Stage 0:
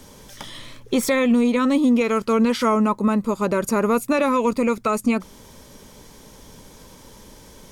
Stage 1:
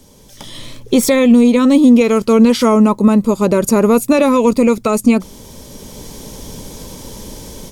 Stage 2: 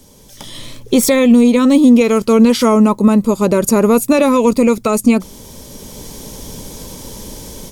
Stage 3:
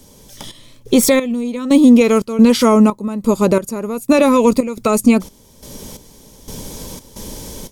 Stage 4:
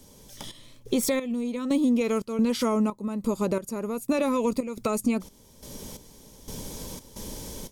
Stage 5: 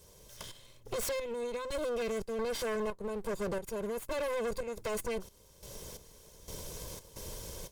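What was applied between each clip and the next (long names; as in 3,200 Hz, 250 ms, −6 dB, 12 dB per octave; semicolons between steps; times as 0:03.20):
parametric band 1,500 Hz −8.5 dB 1.6 octaves; automatic gain control gain up to 14.5 dB
high-shelf EQ 7,400 Hz +4 dB
gate pattern "xxx..xx...xxx." 88 BPM −12 dB
downward compressor 2 to 1, threshold −19 dBFS, peak gain reduction 8 dB; level −7 dB
lower of the sound and its delayed copy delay 1.9 ms; gain into a clipping stage and back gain 27.5 dB; level −4 dB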